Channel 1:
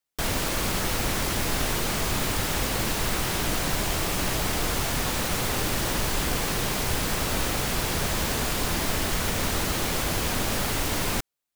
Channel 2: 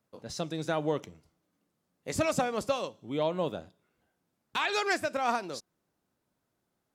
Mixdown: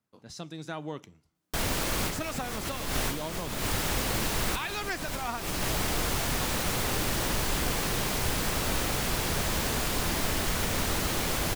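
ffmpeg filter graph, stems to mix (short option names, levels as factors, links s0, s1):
-filter_complex "[0:a]adelay=1350,volume=0.75[s0];[1:a]equalizer=f=540:t=o:w=0.72:g=-7.5,volume=0.631,asplit=2[s1][s2];[s2]apad=whole_len=569058[s3];[s0][s3]sidechaincompress=threshold=0.00631:ratio=4:attack=16:release=154[s4];[s4][s1]amix=inputs=2:normalize=0"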